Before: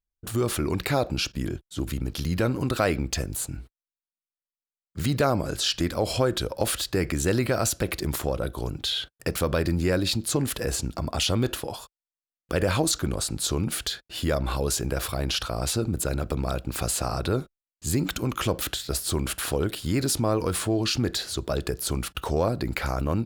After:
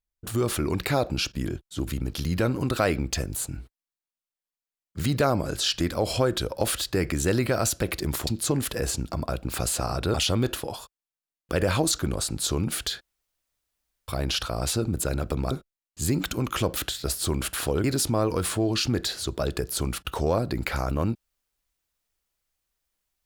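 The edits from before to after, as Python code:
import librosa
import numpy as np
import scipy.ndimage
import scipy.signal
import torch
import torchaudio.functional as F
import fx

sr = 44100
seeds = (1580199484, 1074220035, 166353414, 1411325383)

y = fx.edit(x, sr, fx.cut(start_s=8.27, length_s=1.85),
    fx.room_tone_fill(start_s=14.01, length_s=1.07),
    fx.move(start_s=16.51, length_s=0.85, to_s=11.14),
    fx.cut(start_s=19.69, length_s=0.25), tone=tone)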